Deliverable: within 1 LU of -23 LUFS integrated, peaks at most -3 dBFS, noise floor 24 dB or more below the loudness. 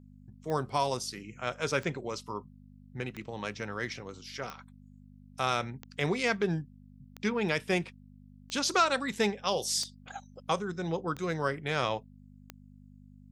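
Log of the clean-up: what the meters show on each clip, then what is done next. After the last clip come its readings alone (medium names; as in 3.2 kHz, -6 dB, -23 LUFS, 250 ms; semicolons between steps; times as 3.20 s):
clicks found 10; hum 50 Hz; highest harmonic 250 Hz; hum level -50 dBFS; loudness -32.5 LUFS; peak level -14.0 dBFS; loudness target -23.0 LUFS
-> de-click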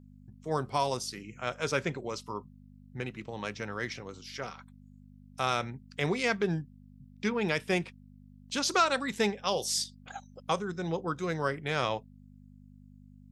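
clicks found 0; hum 50 Hz; highest harmonic 250 Hz; hum level -50 dBFS
-> de-hum 50 Hz, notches 5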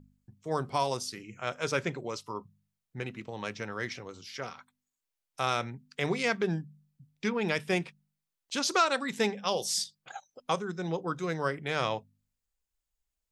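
hum not found; loudness -32.5 LUFS; peak level -13.5 dBFS; loudness target -23.0 LUFS
-> trim +9.5 dB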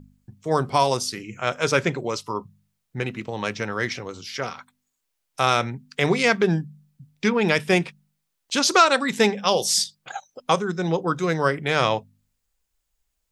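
loudness -23.0 LUFS; peak level -4.0 dBFS; noise floor -77 dBFS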